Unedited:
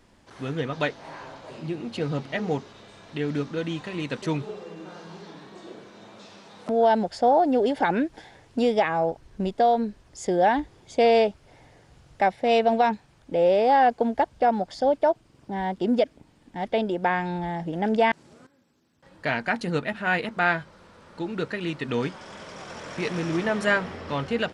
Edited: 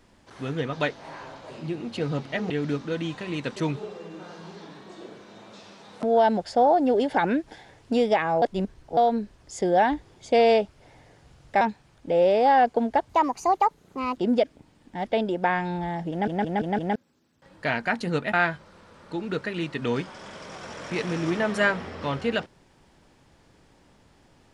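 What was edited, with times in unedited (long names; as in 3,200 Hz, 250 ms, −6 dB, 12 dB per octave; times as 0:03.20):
0:02.50–0:03.16: remove
0:09.08–0:09.63: reverse
0:12.27–0:12.85: remove
0:14.33–0:15.77: play speed 134%
0:17.71: stutter in place 0.17 s, 5 plays
0:19.94–0:20.40: remove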